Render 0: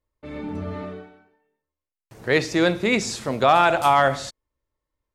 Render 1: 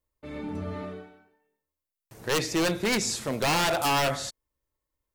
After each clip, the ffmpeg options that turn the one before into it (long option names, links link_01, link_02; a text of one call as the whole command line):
ffmpeg -i in.wav -af "aeval=exprs='0.158*(abs(mod(val(0)/0.158+3,4)-2)-1)':channel_layout=same,highshelf=frequency=8100:gain=11,volume=-3.5dB" out.wav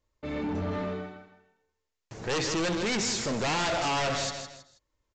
ffmpeg -i in.wav -af "aecho=1:1:161|322|483:0.251|0.0779|0.0241,aresample=16000,asoftclip=type=tanh:threshold=-33dB,aresample=44100,volume=6.5dB" out.wav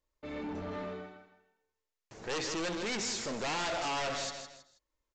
ffmpeg -i in.wav -af "equalizer=frequency=110:width=0.85:gain=-8,volume=-5.5dB" out.wav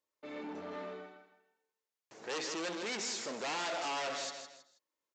ffmpeg -i in.wav -af "highpass=260,volume=-2.5dB" out.wav